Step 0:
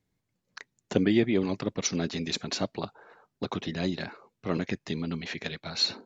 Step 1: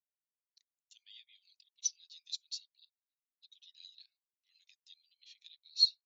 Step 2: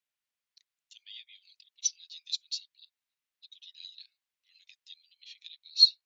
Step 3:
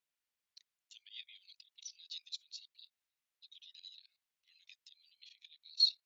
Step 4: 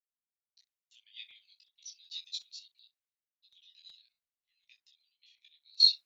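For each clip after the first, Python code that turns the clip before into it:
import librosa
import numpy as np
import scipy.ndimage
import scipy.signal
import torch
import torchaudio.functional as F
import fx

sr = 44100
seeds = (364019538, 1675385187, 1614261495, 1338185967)

y1 = scipy.signal.sosfilt(scipy.signal.cheby2(4, 70, 770.0, 'highpass', fs=sr, output='sos'), x)
y1 = fx.spectral_expand(y1, sr, expansion=1.5)
y2 = fx.peak_eq(y1, sr, hz=2500.0, db=10.0, octaves=2.4)
y3 = fx.level_steps(y2, sr, step_db=12)
y3 = fx.auto_swell(y3, sr, attack_ms=119.0)
y3 = fx.wow_flutter(y3, sr, seeds[0], rate_hz=2.1, depth_cents=18.0)
y3 = y3 * 10.0 ** (3.5 / 20.0)
y4 = fx.room_early_taps(y3, sr, ms=(16, 26, 63), db=(-4.0, -4.0, -15.5))
y4 = fx.buffer_crackle(y4, sr, first_s=0.93, period_s=0.37, block=256, kind='repeat')
y4 = fx.band_widen(y4, sr, depth_pct=70)
y4 = y4 * 10.0 ** (-2.5 / 20.0)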